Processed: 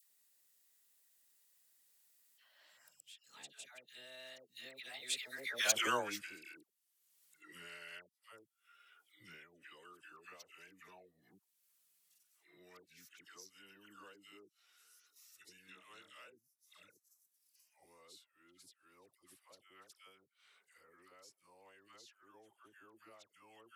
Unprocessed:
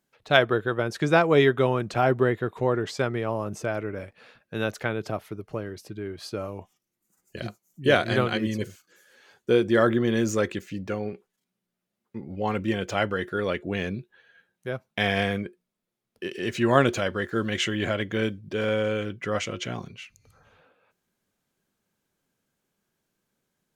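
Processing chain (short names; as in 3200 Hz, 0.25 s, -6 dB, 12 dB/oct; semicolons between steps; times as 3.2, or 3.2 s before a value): whole clip reversed; Doppler pass-by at 5.69, 57 m/s, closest 7.6 m; HPF 82 Hz; differentiator; upward compressor, threshold -55 dBFS; dispersion lows, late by 0.109 s, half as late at 1000 Hz; gain +8.5 dB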